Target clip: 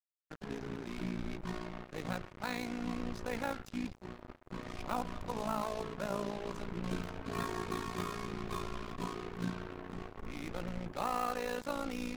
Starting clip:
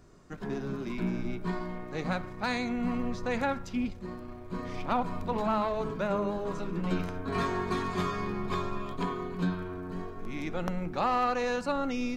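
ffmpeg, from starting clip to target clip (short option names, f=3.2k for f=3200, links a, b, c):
-af "acrusher=bits=5:mix=0:aa=0.5,tremolo=f=57:d=0.824,volume=-4dB"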